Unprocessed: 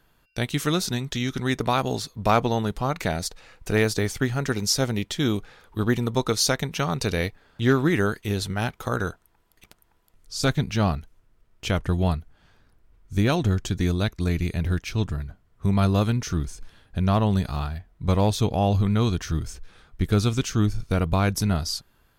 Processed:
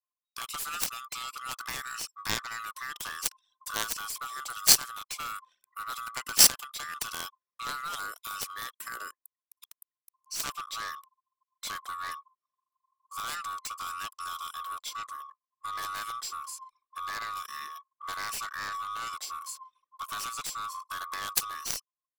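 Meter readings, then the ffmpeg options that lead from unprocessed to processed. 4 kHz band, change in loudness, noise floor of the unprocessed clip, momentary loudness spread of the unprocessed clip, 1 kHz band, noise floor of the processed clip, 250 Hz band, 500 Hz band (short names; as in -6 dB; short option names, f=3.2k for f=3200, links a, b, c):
-1.5 dB, -6.5 dB, -63 dBFS, 9 LU, -5.0 dB, under -85 dBFS, -29.0 dB, -24.5 dB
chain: -filter_complex "[0:a]afftfilt=real='real(if(lt(b,960),b+48*(1-2*mod(floor(b/48),2)),b),0)':imag='imag(if(lt(b,960),b+48*(1-2*mod(floor(b/48),2)),b),0)':win_size=2048:overlap=0.75,aderivative,aeval=exprs='0.282*(cos(1*acos(clip(val(0)/0.282,-1,1)))-cos(1*PI/2))+0.0562*(cos(7*acos(clip(val(0)/0.282,-1,1)))-cos(7*PI/2))+0.002*(cos(8*acos(clip(val(0)/0.282,-1,1)))-cos(8*PI/2))':c=same,asplit=2[a][b];[b]acompressor=threshold=-53dB:ratio=16,volume=-1dB[c];[a][c]amix=inputs=2:normalize=0,anlmdn=0.0001,volume=8dB"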